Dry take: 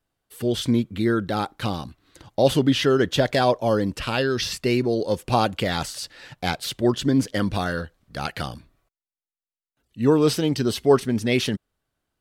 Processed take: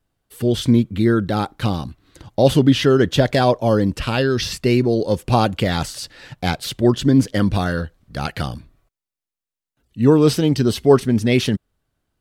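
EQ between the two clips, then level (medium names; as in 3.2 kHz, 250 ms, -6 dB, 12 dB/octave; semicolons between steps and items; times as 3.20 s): bass shelf 270 Hz +7 dB; +2.0 dB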